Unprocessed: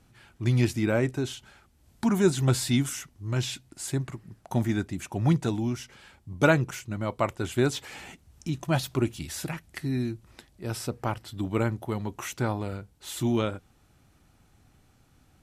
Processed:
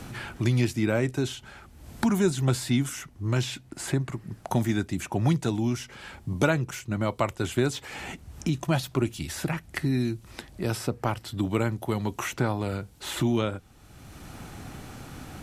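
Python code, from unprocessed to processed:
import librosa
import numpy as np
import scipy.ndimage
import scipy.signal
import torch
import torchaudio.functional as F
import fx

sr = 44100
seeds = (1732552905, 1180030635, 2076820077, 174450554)

y = fx.band_squash(x, sr, depth_pct=70)
y = F.gain(torch.from_numpy(y), 1.0).numpy()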